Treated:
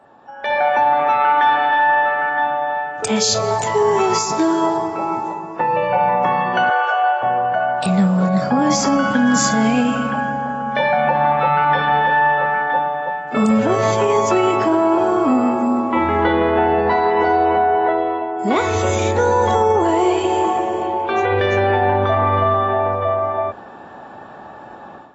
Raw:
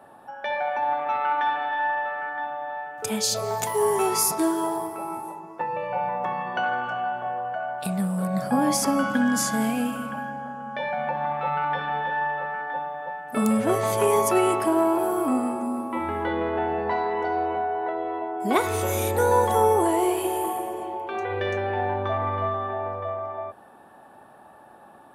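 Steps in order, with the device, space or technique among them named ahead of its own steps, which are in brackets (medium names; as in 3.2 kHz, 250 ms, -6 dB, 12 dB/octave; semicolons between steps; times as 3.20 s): 6.70–7.23 s: steep high-pass 400 Hz 96 dB/octave; low-bitrate web radio (level rider gain up to 12.5 dB; peak limiter -7 dBFS, peak gain reduction 5.5 dB; AAC 24 kbps 24 kHz)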